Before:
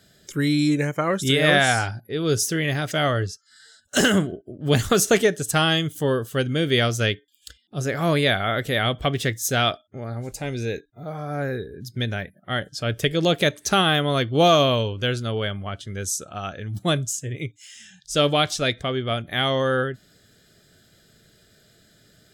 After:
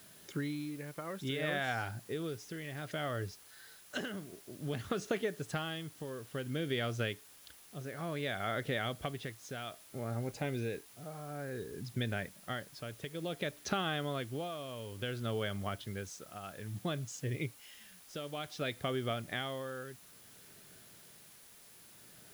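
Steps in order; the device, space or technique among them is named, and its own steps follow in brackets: medium wave at night (BPF 100–3500 Hz; compressor, threshold -28 dBFS, peak gain reduction 14.5 dB; tremolo 0.58 Hz, depth 65%; whine 10000 Hz -60 dBFS; white noise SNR 19 dB); gain -3.5 dB

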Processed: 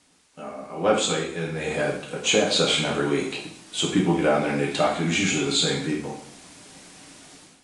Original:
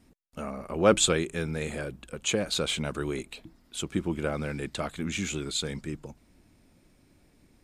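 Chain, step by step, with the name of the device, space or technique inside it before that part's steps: filmed off a television (BPF 160–7600 Hz; bell 780 Hz +7 dB 0.26 oct; reverb RT60 0.65 s, pre-delay 4 ms, DRR -3.5 dB; white noise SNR 26 dB; AGC gain up to 14.5 dB; gain -6 dB; AAC 48 kbps 22050 Hz)

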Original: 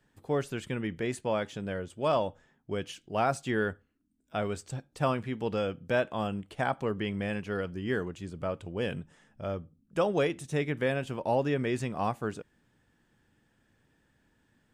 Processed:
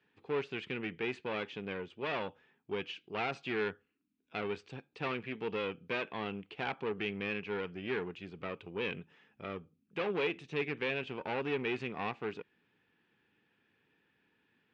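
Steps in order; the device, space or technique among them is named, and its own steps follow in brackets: guitar amplifier (tube stage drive 29 dB, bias 0.6; tone controls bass -9 dB, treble +5 dB; speaker cabinet 89–3800 Hz, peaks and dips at 180 Hz +4 dB, 420 Hz +5 dB, 610 Hz -9 dB, 2500 Hz +9 dB)

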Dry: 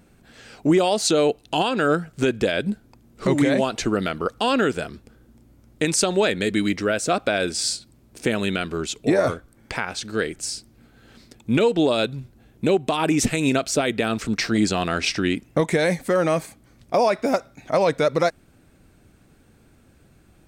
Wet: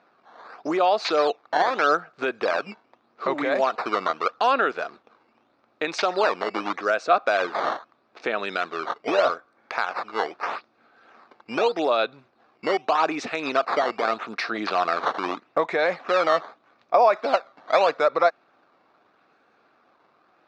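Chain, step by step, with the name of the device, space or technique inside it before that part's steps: circuit-bent sampling toy (decimation with a swept rate 10×, swing 160% 0.81 Hz; speaker cabinet 590–4000 Hz, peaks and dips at 720 Hz +4 dB, 1200 Hz +7 dB, 2000 Hz -4 dB, 3100 Hz -9 dB); gain +1.5 dB

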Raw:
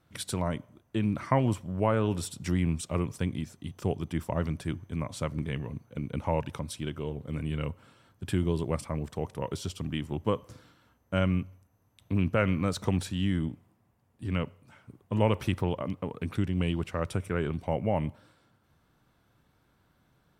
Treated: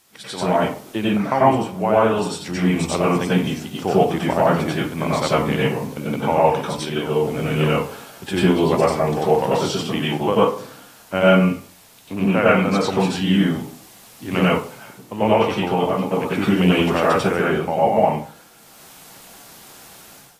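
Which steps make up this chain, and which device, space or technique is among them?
filmed off a television (BPF 230–6800 Hz; bell 790 Hz +9 dB 0.3 oct; reverb RT60 0.40 s, pre-delay 87 ms, DRR -7 dB; white noise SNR 29 dB; AGC gain up to 13 dB; gain -2 dB; AAC 48 kbps 32000 Hz)

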